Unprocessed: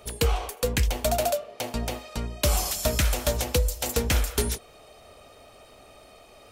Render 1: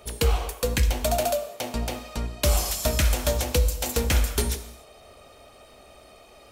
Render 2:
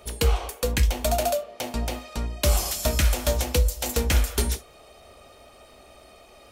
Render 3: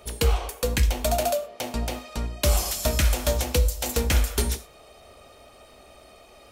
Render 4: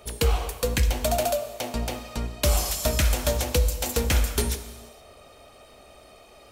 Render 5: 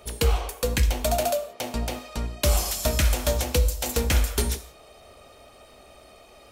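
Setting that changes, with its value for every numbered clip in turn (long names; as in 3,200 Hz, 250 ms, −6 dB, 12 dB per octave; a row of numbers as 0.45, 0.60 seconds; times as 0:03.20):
reverb whose tail is shaped and stops, gate: 320, 90, 140, 500, 200 milliseconds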